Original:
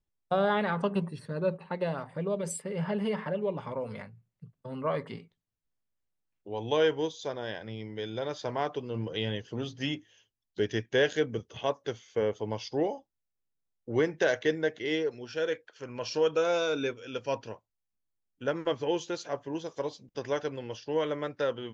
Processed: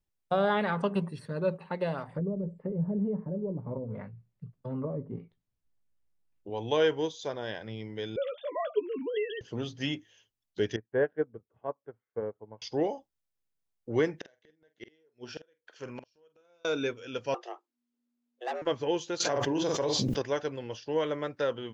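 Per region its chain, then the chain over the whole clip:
2.08–6.5 treble ducked by the level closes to 350 Hz, closed at -31 dBFS + tilt -1.5 dB/oct + doubler 16 ms -12.5 dB
8.16–9.41 sine-wave speech + doubler 14 ms -10 dB
10.76–12.62 LPF 1500 Hz 24 dB/oct + upward expander 2.5:1, over -37 dBFS
14.16–16.65 low shelf 75 Hz -2 dB + flipped gate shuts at -27 dBFS, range -38 dB + doubler 46 ms -12 dB
17.34–18.62 hard clip -29.5 dBFS + frequency shift +240 Hz + air absorption 50 m
19.2–20.22 doubler 46 ms -9 dB + fast leveller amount 100%
whole clip: dry

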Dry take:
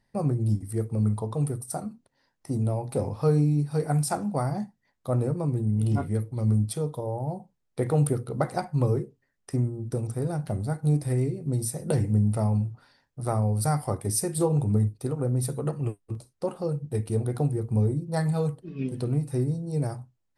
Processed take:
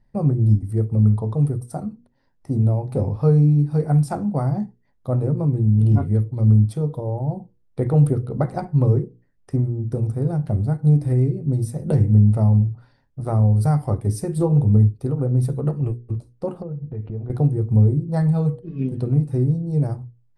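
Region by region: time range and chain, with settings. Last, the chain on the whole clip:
16.62–17.3 LPF 2700 Hz 24 dB/oct + compressor 5:1, threshold -34 dBFS
whole clip: tilt -3 dB/oct; notches 60/120/180/240/300/360/420/480 Hz; ending taper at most 560 dB/s

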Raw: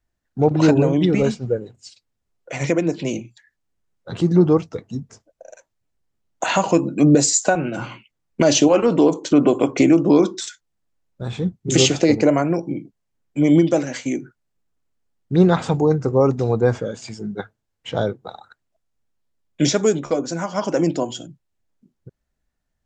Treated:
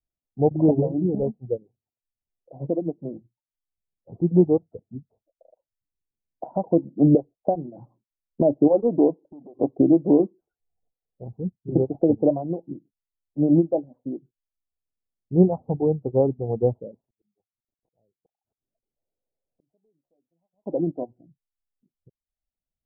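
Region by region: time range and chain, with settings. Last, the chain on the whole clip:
9.15–9.59 compressor 4:1, threshold -29 dBFS + core saturation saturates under 490 Hz
10.47–11.24 transient shaper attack -2 dB, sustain +11 dB + small resonant body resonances 460/730 Hz, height 11 dB, ringing for 30 ms
17–20.66 CVSD 32 kbps + flipped gate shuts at -24 dBFS, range -35 dB + compressor 8:1, threshold -50 dBFS
whole clip: steep low-pass 800 Hz 48 dB/oct; reverb removal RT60 0.56 s; upward expander 1.5:1, over -35 dBFS; gain -1 dB

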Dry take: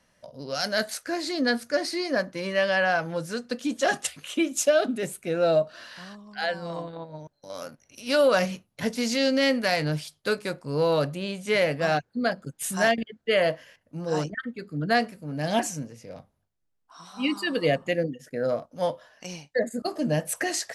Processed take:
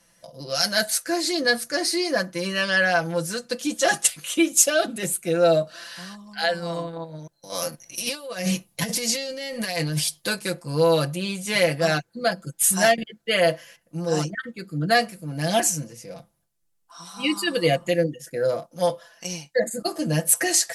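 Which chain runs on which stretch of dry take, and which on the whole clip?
7.52–10.28 notch 1400 Hz, Q 8.2 + negative-ratio compressor -31 dBFS
whole clip: bell 11000 Hz +12 dB 1.8 oct; comb 5.9 ms, depth 77%

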